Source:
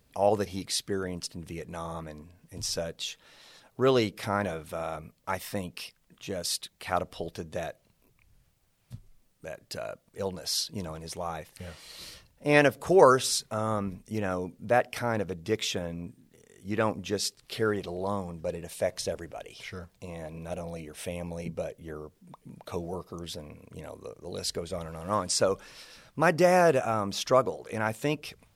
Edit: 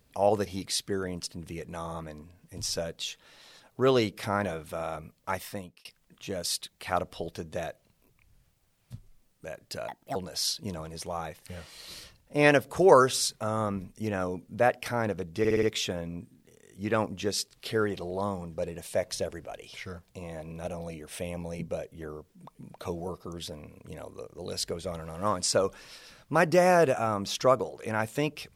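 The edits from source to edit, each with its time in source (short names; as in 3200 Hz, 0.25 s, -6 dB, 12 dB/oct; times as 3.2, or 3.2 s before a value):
5.37–5.85 fade out linear
9.88–10.26 speed 138%
15.49 stutter 0.06 s, 5 plays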